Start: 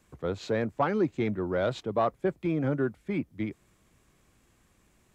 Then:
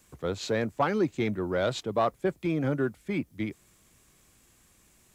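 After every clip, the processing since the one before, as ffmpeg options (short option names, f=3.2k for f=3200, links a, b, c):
-af "highshelf=f=3.7k:g=11.5"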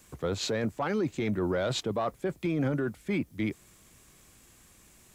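-af "alimiter=level_in=1.5dB:limit=-24dB:level=0:latency=1:release=13,volume=-1.5dB,volume=4dB"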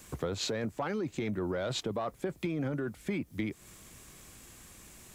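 -af "acompressor=threshold=-36dB:ratio=6,volume=5dB"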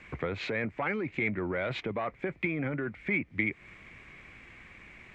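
-af "lowpass=f=2.2k:t=q:w=5.6"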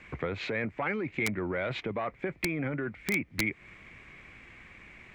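-af "aeval=exprs='(mod(8.41*val(0)+1,2)-1)/8.41':c=same"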